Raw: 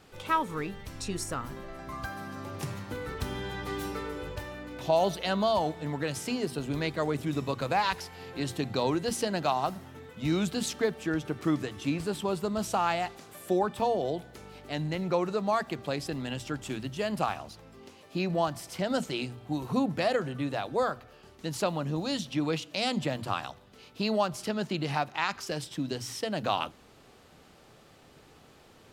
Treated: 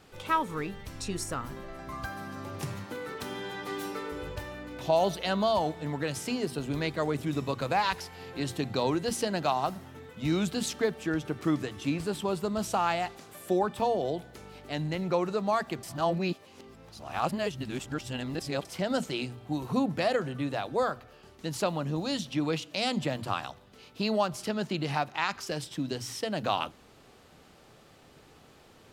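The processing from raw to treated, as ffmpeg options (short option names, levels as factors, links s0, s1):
-filter_complex "[0:a]asettb=1/sr,asplit=3[s0][s1][s2];[s0]atrim=end=2.864[s3];[s1]atrim=start=2.86:end=4.12,asetpts=PTS-STARTPTS,afade=t=in:d=0.004:c=qsin,afade=t=out:st=1.256:d=0.004:c=qsin,highpass=210[s4];[s2]atrim=start=4.116[s5];[s3][s4]acrossfade=d=0.004:c1=hsin:c2=qsin[s6];[s6][s5]acrossfade=d=0.004:c1=qsin:c2=hsin,asplit=3[s7][s8][s9];[s7]atrim=end=15.832[s10];[s8]atrim=start=15.828:end=18.652,asetpts=PTS-STARTPTS,areverse[s11];[s9]atrim=start=18.648[s12];[s10][s11]acrossfade=d=0.004:c1=hsin:c2=hsin[s13];[s13][s12]acrossfade=d=0.004:c1=hsin:c2=hsin"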